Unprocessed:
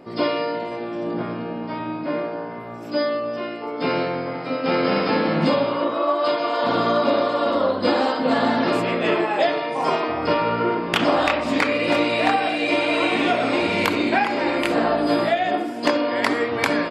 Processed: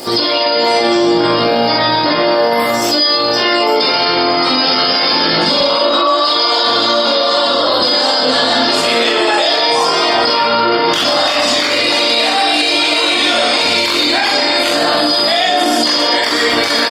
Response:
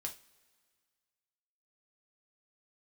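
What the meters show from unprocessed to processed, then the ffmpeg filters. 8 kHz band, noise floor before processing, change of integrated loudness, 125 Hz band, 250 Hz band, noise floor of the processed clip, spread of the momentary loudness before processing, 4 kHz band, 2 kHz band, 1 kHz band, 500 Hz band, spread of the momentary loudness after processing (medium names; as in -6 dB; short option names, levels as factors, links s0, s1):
no reading, -31 dBFS, +10.0 dB, +1.5 dB, +4.5 dB, -14 dBFS, 8 LU, +19.5 dB, +9.0 dB, +8.5 dB, +6.5 dB, 1 LU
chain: -filter_complex "[0:a]bandreject=f=4000:w=14,acrossover=split=240|2500[s0][s1][s2];[s2]asoftclip=type=tanh:threshold=0.0891[s3];[s0][s1][s3]amix=inputs=3:normalize=0,flanger=delay=19.5:depth=4.7:speed=0.31,lowshelf=f=330:g=-9.5,asplit=2[s4][s5];[s5]aecho=0:1:126|252|378:0.237|0.0735|0.0228[s6];[s4][s6]amix=inputs=2:normalize=0,aexciter=amount=12:drive=2.7:freq=3800,acompressor=threshold=0.0355:ratio=6,highshelf=f=2900:g=10,asplit=2[s7][s8];[s8]adelay=43,volume=0.708[s9];[s7][s9]amix=inputs=2:normalize=0,acrossover=split=4100[s10][s11];[s11]acompressor=threshold=0.00282:ratio=4:attack=1:release=60[s12];[s10][s12]amix=inputs=2:normalize=0,alimiter=level_in=20:limit=0.891:release=50:level=0:latency=1,volume=0.708" -ar 48000 -c:a libopus -b:a 24k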